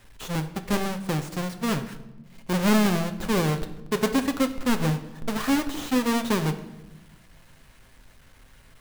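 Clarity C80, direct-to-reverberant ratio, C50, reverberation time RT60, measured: 14.0 dB, 7.0 dB, 11.5 dB, 1.1 s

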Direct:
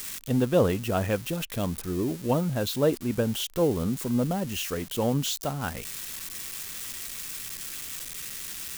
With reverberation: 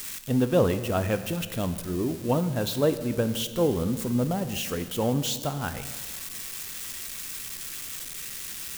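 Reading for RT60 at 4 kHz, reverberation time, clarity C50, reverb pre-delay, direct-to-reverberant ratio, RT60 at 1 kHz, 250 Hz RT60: 1.5 s, 1.6 s, 12.0 dB, 11 ms, 10.0 dB, 1.6 s, 1.9 s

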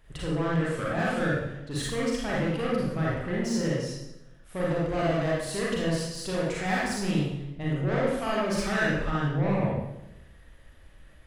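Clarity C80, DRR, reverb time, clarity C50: 2.5 dB, -6.0 dB, 0.90 s, -1.5 dB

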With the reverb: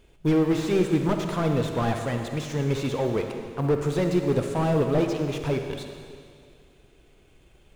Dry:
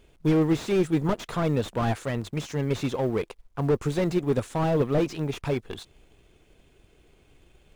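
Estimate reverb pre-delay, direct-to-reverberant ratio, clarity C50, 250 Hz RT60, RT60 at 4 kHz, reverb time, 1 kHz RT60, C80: 40 ms, 4.5 dB, 4.5 dB, 2.2 s, 2.1 s, 2.2 s, 2.2 s, 6.0 dB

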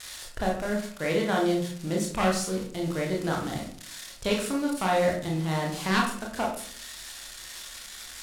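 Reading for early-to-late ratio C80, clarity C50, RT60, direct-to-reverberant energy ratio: 9.5 dB, 5.5 dB, 0.55 s, -1.5 dB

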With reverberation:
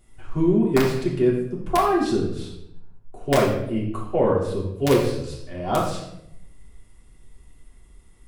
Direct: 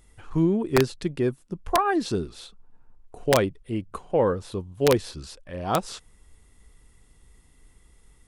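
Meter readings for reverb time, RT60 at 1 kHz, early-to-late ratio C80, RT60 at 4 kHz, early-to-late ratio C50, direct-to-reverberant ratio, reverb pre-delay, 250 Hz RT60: 0.80 s, 0.65 s, 7.0 dB, 0.55 s, 3.5 dB, -6.5 dB, 3 ms, 1.0 s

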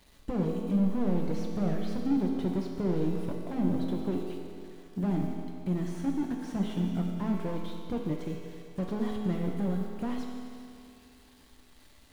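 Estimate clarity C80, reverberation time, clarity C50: 3.0 dB, 2.5 s, 2.0 dB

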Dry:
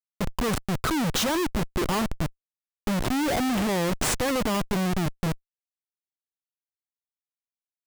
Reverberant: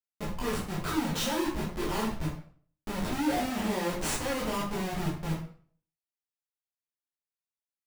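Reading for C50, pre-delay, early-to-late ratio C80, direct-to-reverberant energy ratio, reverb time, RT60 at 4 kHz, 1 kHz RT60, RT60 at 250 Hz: 5.0 dB, 10 ms, 9.5 dB, -6.5 dB, 0.50 s, 0.40 s, 0.45 s, 0.50 s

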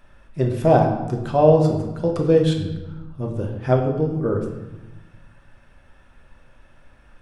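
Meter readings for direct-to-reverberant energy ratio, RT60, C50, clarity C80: 1.0 dB, 1.1 s, 6.0 dB, 8.5 dB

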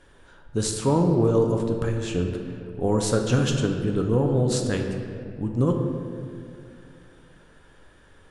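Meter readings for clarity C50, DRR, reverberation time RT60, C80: 4.5 dB, 2.5 dB, 2.3 s, 6.0 dB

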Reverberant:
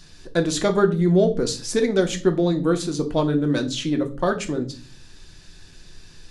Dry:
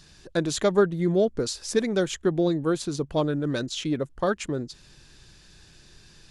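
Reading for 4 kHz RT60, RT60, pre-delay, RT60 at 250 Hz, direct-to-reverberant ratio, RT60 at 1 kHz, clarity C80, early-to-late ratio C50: 0.35 s, 0.40 s, 3 ms, 0.60 s, 4.5 dB, 0.30 s, 21.0 dB, 15.0 dB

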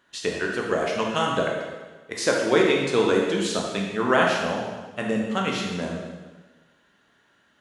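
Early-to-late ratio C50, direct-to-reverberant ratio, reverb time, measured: 2.0 dB, -1.5 dB, 1.3 s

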